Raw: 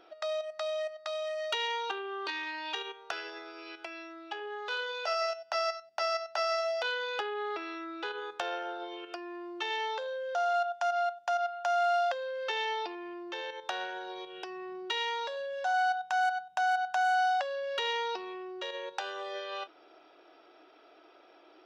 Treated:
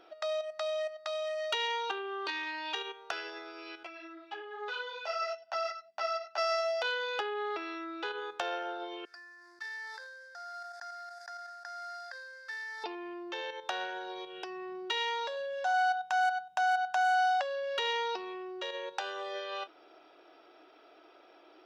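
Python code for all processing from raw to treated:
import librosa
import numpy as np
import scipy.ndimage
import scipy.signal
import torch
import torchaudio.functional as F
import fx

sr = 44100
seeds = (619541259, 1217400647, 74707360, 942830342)

y = fx.chain(x, sr, fx.brickwall_highpass(low_hz=160.0),
    fx.air_absorb(metres=67.0),
    fx.ensemble(), at=(3.83, 6.38))
y = fx.chain(y, sr, fx.cvsd(bps=64000),
    fx.double_bandpass(hz=2900.0, octaves=1.5),
    fx.sustainer(db_per_s=23.0), at=(9.05, 12.84))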